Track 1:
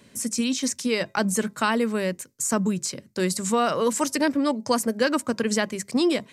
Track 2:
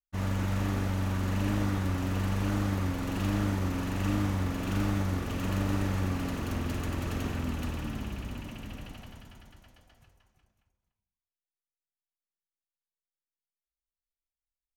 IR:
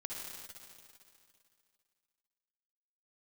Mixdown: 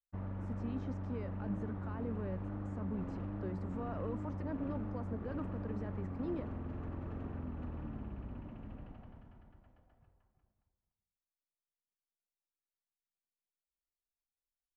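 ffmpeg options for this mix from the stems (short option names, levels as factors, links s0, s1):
-filter_complex "[0:a]alimiter=limit=0.112:level=0:latency=1,adelay=250,volume=0.2[s0];[1:a]acompressor=threshold=0.0251:ratio=4,volume=0.501[s1];[s0][s1]amix=inputs=2:normalize=0,lowpass=1100"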